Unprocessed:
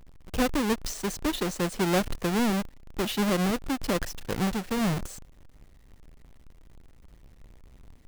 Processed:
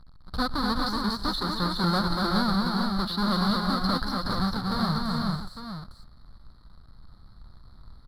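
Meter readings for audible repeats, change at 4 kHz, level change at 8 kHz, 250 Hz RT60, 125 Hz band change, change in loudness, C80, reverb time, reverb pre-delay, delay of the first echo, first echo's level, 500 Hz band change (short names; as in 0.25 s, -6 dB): 6, +6.5 dB, -11.0 dB, none, +3.0 dB, +1.5 dB, none, none, none, 0.125 s, -19.5 dB, -5.0 dB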